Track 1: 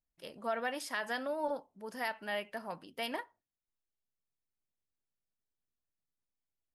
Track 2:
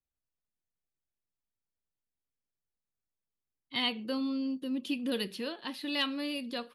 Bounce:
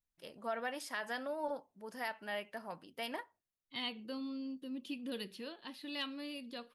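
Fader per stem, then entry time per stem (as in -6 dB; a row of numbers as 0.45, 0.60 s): -3.5, -9.0 dB; 0.00, 0.00 s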